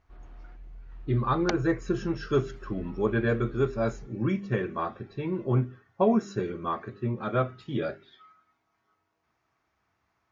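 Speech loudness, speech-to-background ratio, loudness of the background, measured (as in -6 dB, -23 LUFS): -29.0 LUFS, 19.5 dB, -48.5 LUFS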